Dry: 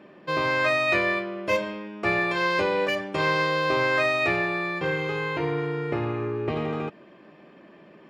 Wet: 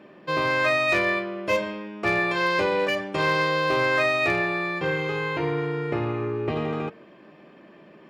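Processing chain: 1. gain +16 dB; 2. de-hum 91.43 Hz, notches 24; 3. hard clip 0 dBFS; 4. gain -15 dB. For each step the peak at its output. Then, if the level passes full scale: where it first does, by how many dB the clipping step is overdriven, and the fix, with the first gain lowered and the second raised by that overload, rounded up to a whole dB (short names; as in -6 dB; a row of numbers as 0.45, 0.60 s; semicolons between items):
+5.5, +5.0, 0.0, -15.0 dBFS; step 1, 5.0 dB; step 1 +11 dB, step 4 -10 dB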